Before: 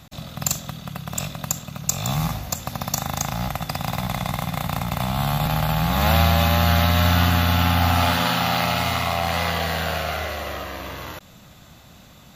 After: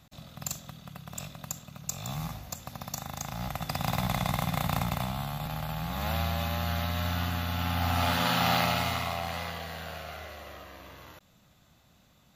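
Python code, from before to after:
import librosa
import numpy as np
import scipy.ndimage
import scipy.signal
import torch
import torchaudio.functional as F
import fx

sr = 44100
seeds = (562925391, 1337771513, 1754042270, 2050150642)

y = fx.gain(x, sr, db=fx.line((3.2, -12.0), (3.88, -3.5), (4.83, -3.5), (5.29, -13.0), (7.51, -13.0), (8.51, -3.5), (9.65, -15.0)))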